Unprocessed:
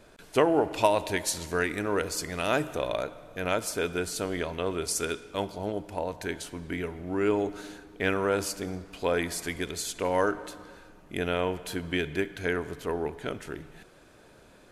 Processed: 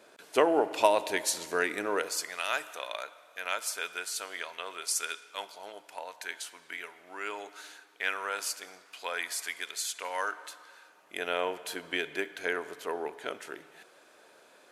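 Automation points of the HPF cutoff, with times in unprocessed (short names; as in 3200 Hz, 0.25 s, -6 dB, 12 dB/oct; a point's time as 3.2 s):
1.86 s 360 Hz
2.46 s 1100 Hz
10.7 s 1100 Hz
11.38 s 490 Hz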